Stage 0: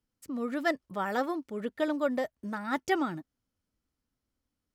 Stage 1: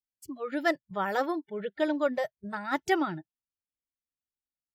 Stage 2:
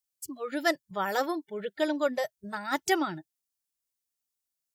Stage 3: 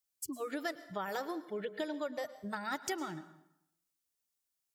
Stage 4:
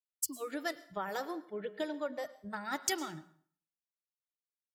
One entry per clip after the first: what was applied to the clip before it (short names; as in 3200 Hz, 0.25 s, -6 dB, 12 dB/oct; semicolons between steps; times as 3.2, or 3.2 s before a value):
spectral noise reduction 26 dB; gain +2 dB
tone controls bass -3 dB, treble +11 dB
compressor, threshold -35 dBFS, peak gain reduction 14 dB; plate-style reverb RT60 0.8 s, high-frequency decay 0.8×, pre-delay 95 ms, DRR 14 dB
de-hum 183.4 Hz, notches 28; three-band expander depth 100%